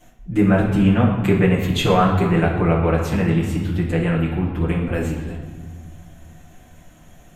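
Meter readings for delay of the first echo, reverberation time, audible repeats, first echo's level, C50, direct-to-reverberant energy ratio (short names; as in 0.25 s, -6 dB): none, 1.6 s, none, none, 3.5 dB, -8.5 dB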